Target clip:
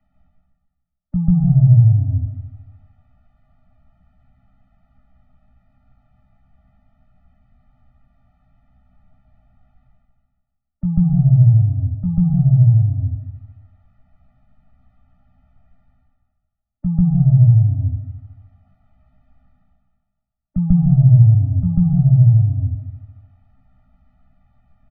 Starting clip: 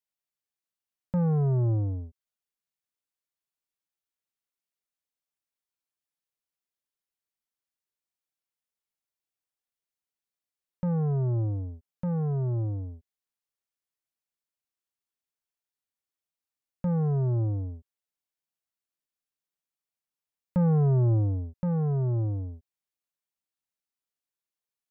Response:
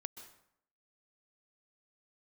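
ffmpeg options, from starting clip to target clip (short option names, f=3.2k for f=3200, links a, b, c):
-filter_complex "[0:a]acrossover=split=160|480[a][b][c];[a]acompressor=threshold=-37dB:ratio=4[d];[b]acompressor=threshold=-32dB:ratio=4[e];[c]acompressor=threshold=-52dB:ratio=4[f];[d][e][f]amix=inputs=3:normalize=0,lowpass=1.3k,areverse,acompressor=mode=upward:threshold=-47dB:ratio=2.5,areverse,aemphasis=mode=reproduction:type=riaa,asplit=2[g][h];[h]adelay=16,volume=-4dB[i];[g][i]amix=inputs=2:normalize=0,aecho=1:1:152|304|456|608|760:0.2|0.102|0.0519|0.0265|0.0135,asplit=2[j][k];[1:a]atrim=start_sample=2205,lowshelf=f=110:g=8.5,adelay=141[l];[k][l]afir=irnorm=-1:irlink=0,volume=6dB[m];[j][m]amix=inputs=2:normalize=0,afftfilt=real='re*eq(mod(floor(b*sr/1024/290),2),0)':imag='im*eq(mod(floor(b*sr/1024/290),2),0)':win_size=1024:overlap=0.75"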